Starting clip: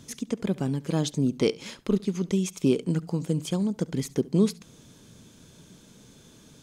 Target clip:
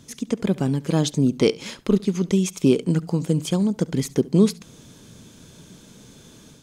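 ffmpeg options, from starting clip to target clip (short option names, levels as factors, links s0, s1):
-af "dynaudnorm=f=130:g=3:m=1.88"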